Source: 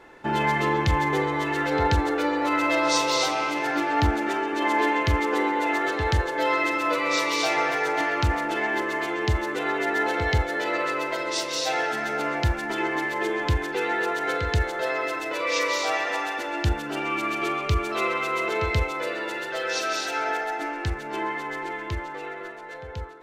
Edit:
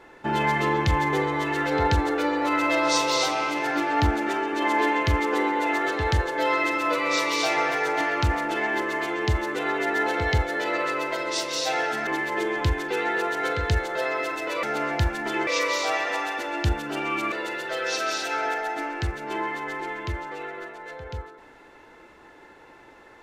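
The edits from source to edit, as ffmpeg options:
-filter_complex "[0:a]asplit=5[s0][s1][s2][s3][s4];[s0]atrim=end=12.072[s5];[s1]atrim=start=12.908:end=15.472[s6];[s2]atrim=start=12.068:end=12.912[s7];[s3]atrim=start=15.468:end=17.322[s8];[s4]atrim=start=19.148[s9];[s5][s6]acrossfade=d=0.004:c1=hsin:c2=hsin[s10];[s10][s7]acrossfade=d=0.004:c1=hsin:c2=hsin[s11];[s11][s8]acrossfade=d=0.004:c1=hsin:c2=hsin[s12];[s12][s9]acrossfade=d=0.004:c1=hsin:c2=hsin"

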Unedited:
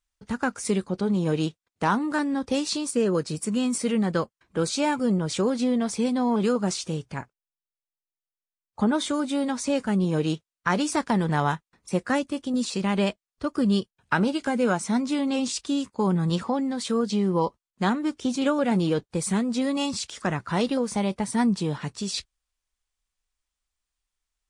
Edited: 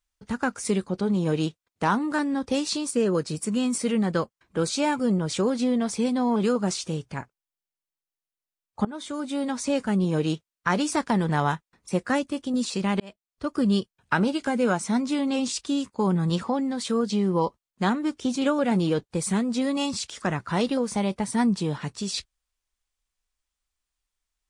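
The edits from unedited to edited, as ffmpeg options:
-filter_complex "[0:a]asplit=3[s0][s1][s2];[s0]atrim=end=8.85,asetpts=PTS-STARTPTS,afade=t=out:st=8.846:d=0.004:c=hsin:silence=0.105925[s3];[s1]atrim=start=8.85:end=13,asetpts=PTS-STARTPTS,afade=t=in:d=0.99:c=qsin:silence=0.105925,afade=t=out:st=4.146:d=0.004:c=hsin[s4];[s2]atrim=start=13,asetpts=PTS-STARTPTS,afade=t=in:d=0.52[s5];[s3][s4][s5]concat=n=3:v=0:a=1"

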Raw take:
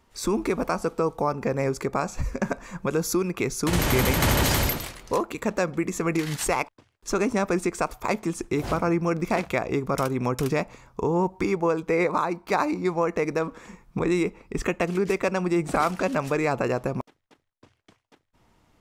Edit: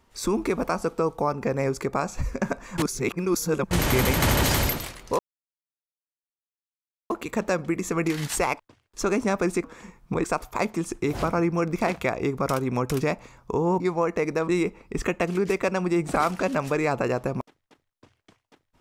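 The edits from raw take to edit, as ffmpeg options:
-filter_complex "[0:a]asplit=8[s0][s1][s2][s3][s4][s5][s6][s7];[s0]atrim=end=2.782[s8];[s1]atrim=start=2.778:end=3.712,asetpts=PTS-STARTPTS,areverse[s9];[s2]atrim=start=3.708:end=5.19,asetpts=PTS-STARTPTS,afade=t=out:st=1.478:d=0.004:c=hsin,apad=pad_dur=1.91[s10];[s3]atrim=start=5.19:end=7.732,asetpts=PTS-STARTPTS,afade=t=in:d=0.004:c=hsin[s11];[s4]atrim=start=13.488:end=14.092[s12];[s5]atrim=start=7.728:end=11.292[s13];[s6]atrim=start=12.798:end=13.492[s14];[s7]atrim=start=14.088[s15];[s8][s9]acrossfade=d=0.004:c1=hsin:c2=hsin[s16];[s10][s11]concat=n=2:v=0:a=1[s17];[s16][s17]acrossfade=d=0.004:c1=hsin:c2=hsin[s18];[s18][s12]acrossfade=d=0.004:c1=hsin:c2=hsin[s19];[s19][s13]acrossfade=d=0.004:c1=hsin:c2=hsin[s20];[s20][s14]acrossfade=d=0.004:c1=hsin:c2=hsin[s21];[s21][s15]acrossfade=d=0.004:c1=hsin:c2=hsin"

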